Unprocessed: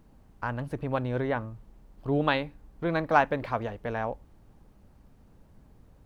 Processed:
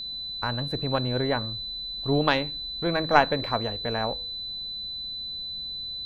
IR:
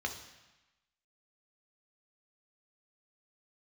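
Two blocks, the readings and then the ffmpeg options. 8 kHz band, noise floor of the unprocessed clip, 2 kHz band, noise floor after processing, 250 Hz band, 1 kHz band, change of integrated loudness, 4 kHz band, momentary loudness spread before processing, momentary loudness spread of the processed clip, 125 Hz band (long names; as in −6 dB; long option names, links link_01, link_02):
can't be measured, −58 dBFS, +2.5 dB, −35 dBFS, +2.5 dB, +2.5 dB, +2.5 dB, +18.0 dB, 13 LU, 10 LU, +2.5 dB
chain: -filter_complex "[0:a]aeval=exprs='0.447*(cos(1*acos(clip(val(0)/0.447,-1,1)))-cos(1*PI/2))+0.112*(cos(2*acos(clip(val(0)/0.447,-1,1)))-cos(2*PI/2))':channel_layout=same,aeval=exprs='val(0)+0.0178*sin(2*PI*4000*n/s)':channel_layout=same,bandreject=frequency=162.4:width_type=h:width=4,bandreject=frequency=324.8:width_type=h:width=4,bandreject=frequency=487.2:width_type=h:width=4,asplit=2[link_01][link_02];[1:a]atrim=start_sample=2205,atrim=end_sample=6615[link_03];[link_02][link_03]afir=irnorm=-1:irlink=0,volume=-22dB[link_04];[link_01][link_04]amix=inputs=2:normalize=0,volume=3dB"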